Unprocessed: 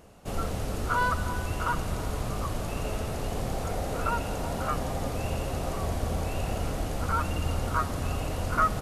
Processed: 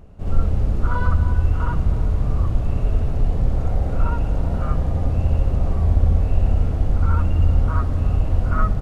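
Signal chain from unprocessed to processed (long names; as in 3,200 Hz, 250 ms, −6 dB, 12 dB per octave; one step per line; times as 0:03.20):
RIAA equalisation playback
on a send: backwards echo 63 ms −3 dB
on the sum: level −3.5 dB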